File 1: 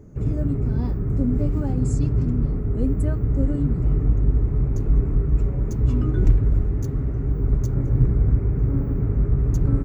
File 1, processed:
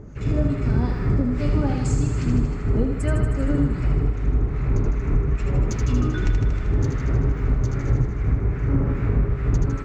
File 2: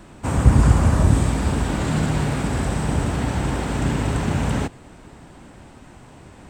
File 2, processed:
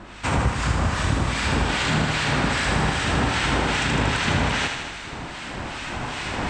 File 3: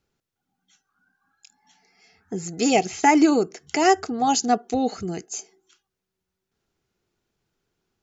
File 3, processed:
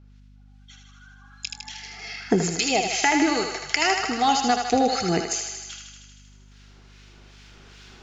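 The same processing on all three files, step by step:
recorder AGC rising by 5.8 dB/s; tilt shelf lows -8 dB, about 1100 Hz; harmonic tremolo 2.5 Hz, depth 70%, crossover 1400 Hz; compressor 10:1, threshold -27 dBFS; air absorption 140 m; thinning echo 78 ms, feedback 73%, high-pass 510 Hz, level -5 dB; hum 50 Hz, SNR 24 dB; match loudness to -23 LUFS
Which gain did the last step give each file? +11.5, +9.5, +11.0 dB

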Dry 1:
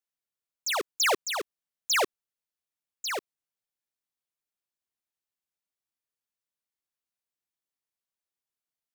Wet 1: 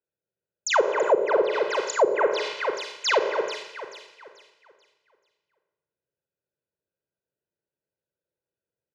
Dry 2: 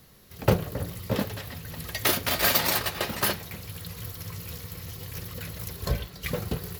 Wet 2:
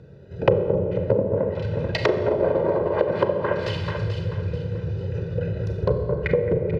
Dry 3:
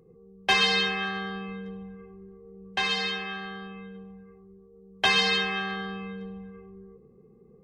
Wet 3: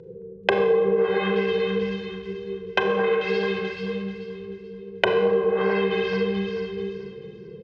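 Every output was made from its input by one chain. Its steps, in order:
Wiener smoothing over 41 samples; wow and flutter 37 cents; on a send: echo with dull and thin repeats by turns 0.218 s, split 2200 Hz, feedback 57%, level -8 dB; on the sum: treble ducked by the level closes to 530 Hz, closed at -25 dBFS; BPF 110–4700 Hz; comb 2 ms, depth 68%; Schroeder reverb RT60 0.92 s, combs from 29 ms, DRR 4.5 dB; dynamic EQ 490 Hz, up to +8 dB, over -44 dBFS, Q 0.72; compressor 3:1, threshold -34 dBFS; match loudness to -24 LUFS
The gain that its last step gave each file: +13.0, +13.5, +13.5 dB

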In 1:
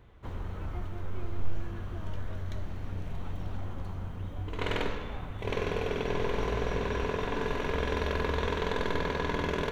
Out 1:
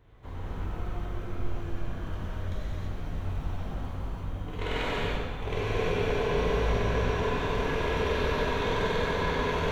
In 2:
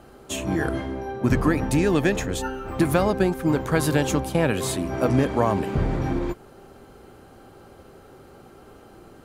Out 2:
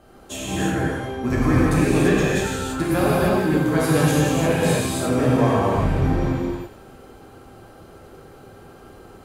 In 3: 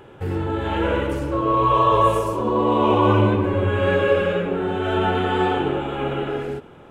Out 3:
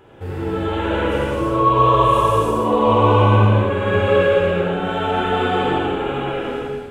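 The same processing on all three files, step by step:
thin delay 91 ms, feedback 62%, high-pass 1700 Hz, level -11.5 dB; non-linear reverb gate 0.37 s flat, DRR -7.5 dB; gain -5 dB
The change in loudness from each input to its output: +3.0, +3.5, +3.0 LU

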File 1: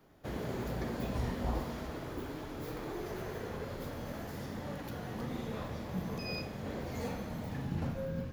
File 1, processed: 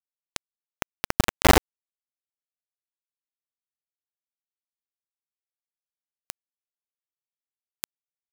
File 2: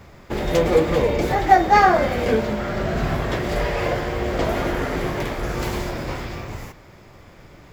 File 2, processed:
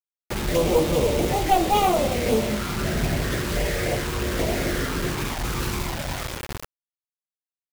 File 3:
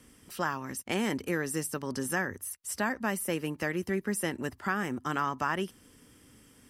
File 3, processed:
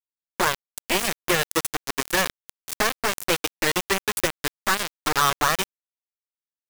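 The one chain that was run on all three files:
one-sided clip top -19 dBFS; envelope flanger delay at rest 6.2 ms, full sweep at -18 dBFS; bit-crush 5-bit; match loudness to -24 LUFS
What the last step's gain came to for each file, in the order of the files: +18.0, 0.0, +11.5 dB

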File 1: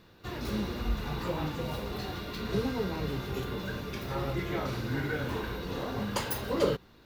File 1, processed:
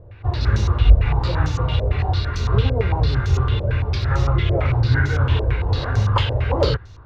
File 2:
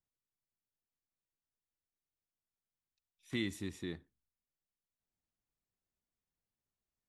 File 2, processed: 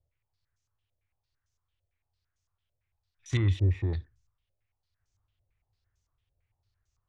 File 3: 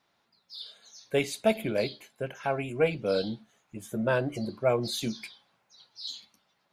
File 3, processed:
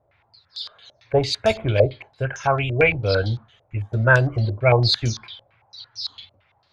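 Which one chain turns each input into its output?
resonant low shelf 140 Hz +12 dB, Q 3; stepped low-pass 8.9 Hz 590–6300 Hz; gain +6 dB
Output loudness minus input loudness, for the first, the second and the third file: +14.0, +12.0, +9.5 LU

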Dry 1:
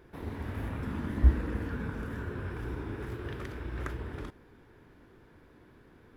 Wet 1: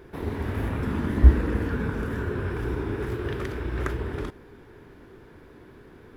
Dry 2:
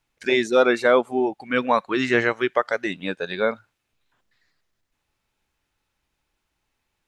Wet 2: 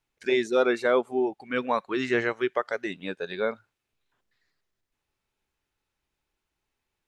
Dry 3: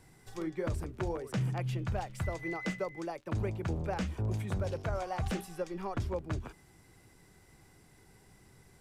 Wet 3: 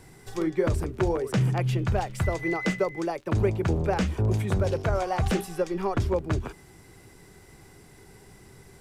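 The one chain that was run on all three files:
bell 400 Hz +5 dB 0.31 oct; match loudness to -27 LUFS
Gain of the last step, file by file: +7.5, -6.5, +8.5 dB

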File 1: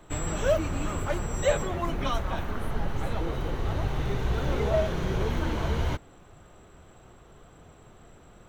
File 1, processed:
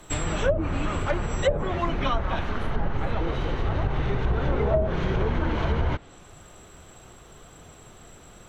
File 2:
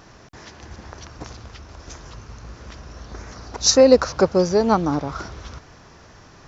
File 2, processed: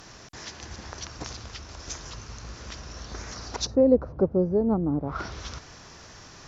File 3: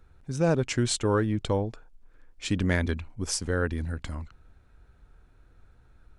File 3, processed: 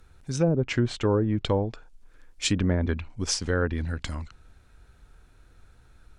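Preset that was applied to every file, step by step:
treble ducked by the level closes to 400 Hz, closed at -18 dBFS; high shelf 2800 Hz +10.5 dB; match loudness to -27 LUFS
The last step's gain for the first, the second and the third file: +3.0, -2.5, +2.0 dB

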